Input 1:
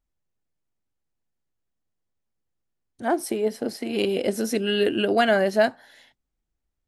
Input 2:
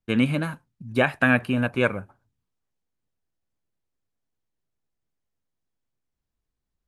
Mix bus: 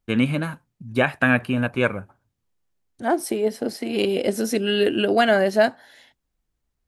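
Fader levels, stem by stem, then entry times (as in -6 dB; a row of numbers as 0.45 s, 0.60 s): +2.0 dB, +1.0 dB; 0.00 s, 0.00 s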